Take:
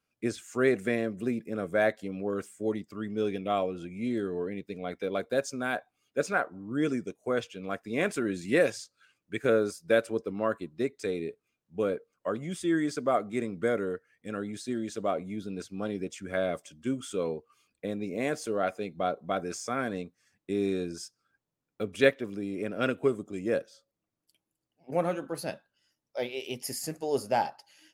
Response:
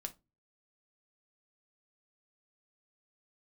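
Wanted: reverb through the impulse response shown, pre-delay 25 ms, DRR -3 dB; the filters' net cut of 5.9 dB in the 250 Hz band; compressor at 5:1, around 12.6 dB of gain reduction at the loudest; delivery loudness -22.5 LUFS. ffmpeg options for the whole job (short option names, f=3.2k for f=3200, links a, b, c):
-filter_complex "[0:a]equalizer=f=250:t=o:g=-8,acompressor=threshold=-33dB:ratio=5,asplit=2[a][b];[1:a]atrim=start_sample=2205,adelay=25[c];[b][c]afir=irnorm=-1:irlink=0,volume=5.5dB[d];[a][d]amix=inputs=2:normalize=0,volume=12dB"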